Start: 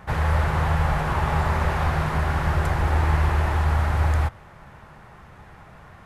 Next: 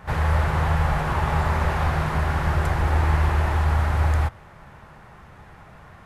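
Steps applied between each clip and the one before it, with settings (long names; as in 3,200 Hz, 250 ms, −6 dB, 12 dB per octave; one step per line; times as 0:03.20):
echo ahead of the sound 37 ms −19 dB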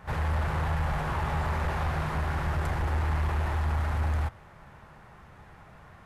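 soft clipping −16.5 dBFS, distortion −17 dB
level −5 dB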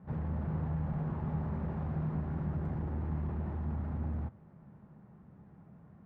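resonant band-pass 200 Hz, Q 2
level +4 dB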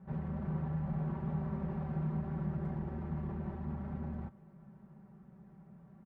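comb filter 5.2 ms, depth 77%
level −3.5 dB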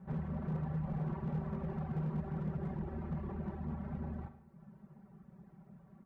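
reverb reduction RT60 0.85 s
hard clipping −33.5 dBFS, distortion −17 dB
convolution reverb RT60 0.75 s, pre-delay 52 ms, DRR 9.5 dB
level +1.5 dB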